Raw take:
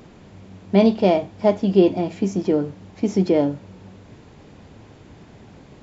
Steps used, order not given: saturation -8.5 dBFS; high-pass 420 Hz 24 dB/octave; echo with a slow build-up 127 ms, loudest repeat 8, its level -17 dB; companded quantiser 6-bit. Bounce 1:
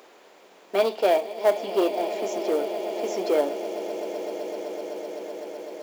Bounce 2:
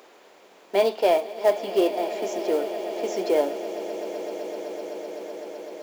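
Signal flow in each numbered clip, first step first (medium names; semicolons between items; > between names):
echo with a slow build-up > saturation > high-pass > companded quantiser; high-pass > saturation > companded quantiser > echo with a slow build-up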